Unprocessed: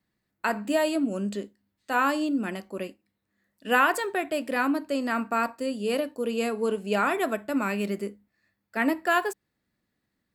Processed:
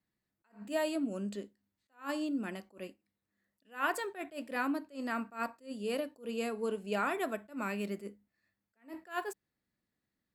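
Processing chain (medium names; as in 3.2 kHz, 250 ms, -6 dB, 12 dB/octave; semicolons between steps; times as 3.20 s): attacks held to a fixed rise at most 220 dB/s; trim -8 dB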